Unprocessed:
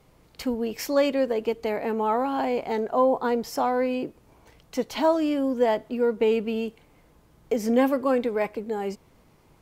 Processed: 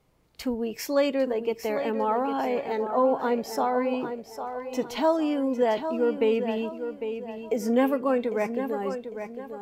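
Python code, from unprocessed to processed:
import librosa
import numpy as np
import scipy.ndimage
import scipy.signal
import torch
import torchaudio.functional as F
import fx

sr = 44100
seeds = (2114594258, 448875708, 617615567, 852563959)

y = fx.echo_feedback(x, sr, ms=802, feedback_pct=41, wet_db=-8.5)
y = fx.noise_reduce_blind(y, sr, reduce_db=7)
y = y * librosa.db_to_amplitude(-1.5)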